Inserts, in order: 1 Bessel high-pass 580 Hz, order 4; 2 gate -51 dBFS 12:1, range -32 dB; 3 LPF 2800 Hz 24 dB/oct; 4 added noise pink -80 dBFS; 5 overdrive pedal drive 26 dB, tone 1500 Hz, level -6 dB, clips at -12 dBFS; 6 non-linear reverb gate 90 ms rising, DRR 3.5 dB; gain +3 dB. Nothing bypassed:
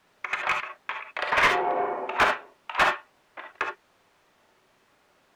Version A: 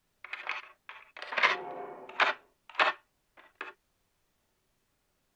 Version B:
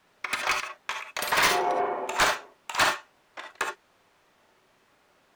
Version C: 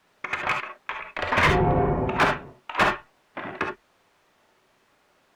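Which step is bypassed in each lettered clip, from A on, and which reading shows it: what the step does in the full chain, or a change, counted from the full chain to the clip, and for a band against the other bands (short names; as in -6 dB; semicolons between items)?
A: 5, crest factor change +7.0 dB; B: 3, 8 kHz band +12.5 dB; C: 1, 125 Hz band +20.5 dB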